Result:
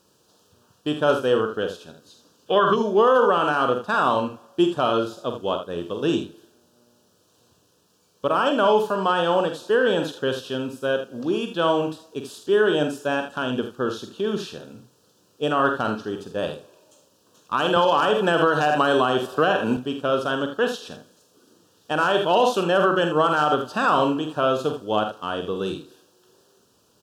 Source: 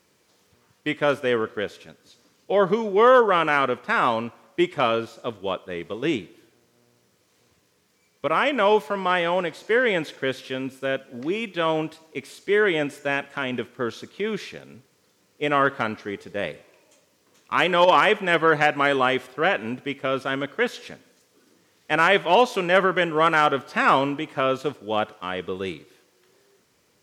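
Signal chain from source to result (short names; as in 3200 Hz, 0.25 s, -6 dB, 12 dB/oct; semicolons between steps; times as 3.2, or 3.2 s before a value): loudspeakers at several distances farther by 16 m -8 dB, 27 m -10 dB; 2.47–2.76 spectral gain 1000–3700 Hz +10 dB; limiter -10 dBFS, peak gain reduction 7.5 dB; Butterworth band-stop 2100 Hz, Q 1.8; 17.76–19.77 three-band squash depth 100%; gain +2 dB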